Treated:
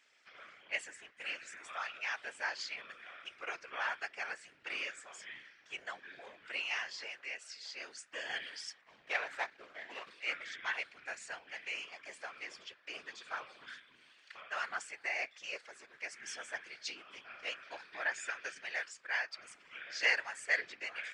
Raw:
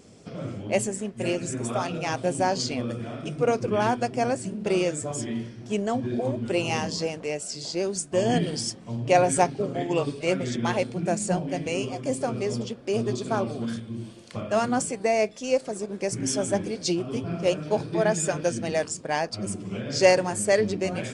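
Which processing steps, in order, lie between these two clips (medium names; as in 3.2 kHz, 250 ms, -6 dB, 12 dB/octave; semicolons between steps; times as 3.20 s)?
8.81–10.11 s: median filter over 15 samples; ladder band-pass 2.1 kHz, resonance 45%; whisper effect; trim +5.5 dB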